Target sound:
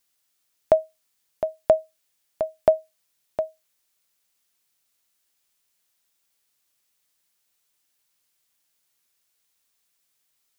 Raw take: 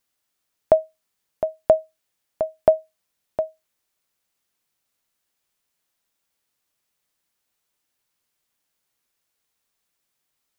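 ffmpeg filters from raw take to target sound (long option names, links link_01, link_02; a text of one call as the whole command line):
ffmpeg -i in.wav -af "highshelf=frequency=2100:gain=8,volume=-2.5dB" out.wav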